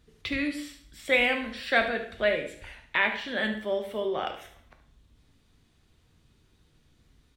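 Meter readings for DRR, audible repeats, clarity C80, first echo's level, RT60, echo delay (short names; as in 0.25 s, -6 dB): 4.0 dB, 1, 12.5 dB, -12.5 dB, 0.60 s, 72 ms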